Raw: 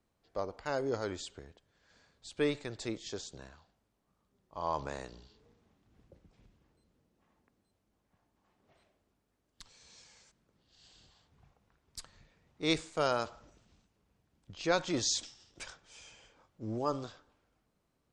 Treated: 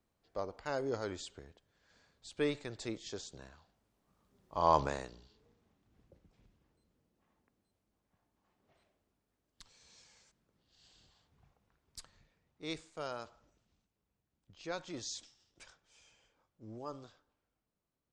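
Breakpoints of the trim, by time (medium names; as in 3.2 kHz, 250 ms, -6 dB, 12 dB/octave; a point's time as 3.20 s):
3.50 s -2.5 dB
4.76 s +7.5 dB
5.17 s -4 dB
11.99 s -4 dB
12.71 s -11 dB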